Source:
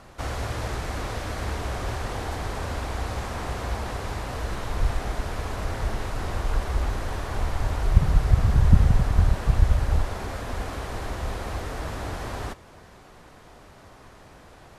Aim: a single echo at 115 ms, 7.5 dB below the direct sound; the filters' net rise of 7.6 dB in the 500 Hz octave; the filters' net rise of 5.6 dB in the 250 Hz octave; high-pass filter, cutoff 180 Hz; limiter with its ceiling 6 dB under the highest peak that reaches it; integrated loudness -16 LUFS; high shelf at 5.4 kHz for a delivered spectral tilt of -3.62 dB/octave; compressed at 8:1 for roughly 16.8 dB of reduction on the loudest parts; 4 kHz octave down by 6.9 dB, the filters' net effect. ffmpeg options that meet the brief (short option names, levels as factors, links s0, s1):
-af "highpass=180,equalizer=f=250:t=o:g=8,equalizer=f=500:t=o:g=7.5,equalizer=f=4000:t=o:g=-7,highshelf=f=5400:g=-5.5,acompressor=threshold=0.0282:ratio=8,alimiter=level_in=1.41:limit=0.0631:level=0:latency=1,volume=0.708,aecho=1:1:115:0.422,volume=10.6"